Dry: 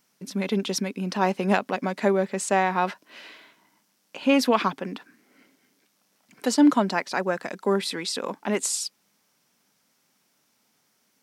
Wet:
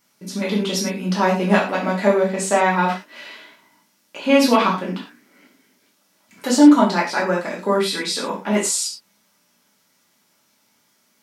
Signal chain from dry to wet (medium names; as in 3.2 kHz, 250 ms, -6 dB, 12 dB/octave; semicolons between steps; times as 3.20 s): gated-style reverb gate 140 ms falling, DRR -5 dB